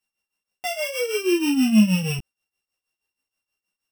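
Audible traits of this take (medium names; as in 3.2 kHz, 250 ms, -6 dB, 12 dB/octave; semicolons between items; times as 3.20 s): a buzz of ramps at a fixed pitch in blocks of 16 samples; tremolo triangle 6.3 Hz, depth 80%; a shimmering, thickened sound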